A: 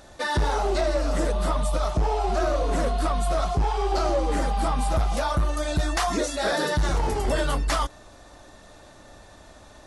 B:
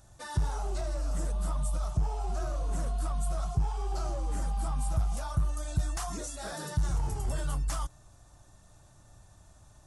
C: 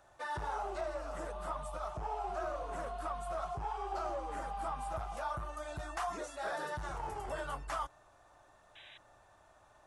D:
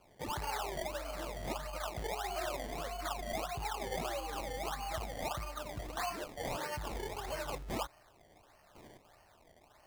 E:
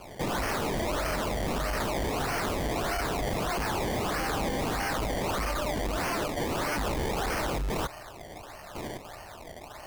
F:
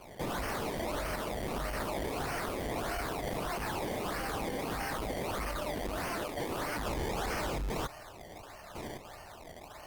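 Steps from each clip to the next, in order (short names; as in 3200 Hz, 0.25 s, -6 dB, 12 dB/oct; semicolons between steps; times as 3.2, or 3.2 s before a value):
ten-band EQ 125 Hz +8 dB, 250 Hz -9 dB, 500 Hz -11 dB, 1000 Hz -3 dB, 2000 Hz -10 dB, 4000 Hz -9 dB, 8000 Hz +3 dB; gain -5.5 dB
three-band isolator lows -20 dB, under 390 Hz, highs -17 dB, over 2900 Hz; painted sound noise, 8.75–8.98, 1500–4000 Hz -59 dBFS; gain +3.5 dB
decimation with a swept rate 23×, swing 100% 1.6 Hz
sine folder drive 15 dB, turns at -26.5 dBFS
gain -4.5 dB; Opus 24 kbps 48000 Hz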